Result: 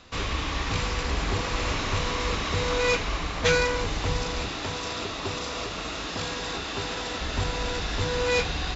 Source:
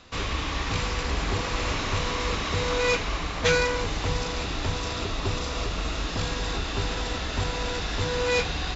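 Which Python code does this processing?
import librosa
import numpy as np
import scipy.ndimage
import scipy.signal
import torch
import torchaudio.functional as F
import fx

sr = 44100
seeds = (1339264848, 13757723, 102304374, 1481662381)

y = fx.highpass(x, sr, hz=210.0, slope=6, at=(4.48, 7.21))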